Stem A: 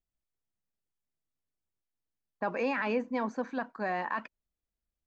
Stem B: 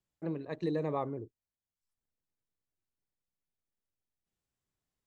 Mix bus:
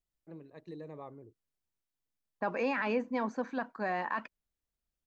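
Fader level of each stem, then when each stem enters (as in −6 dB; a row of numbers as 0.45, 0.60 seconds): −1.0, −12.5 decibels; 0.00, 0.05 seconds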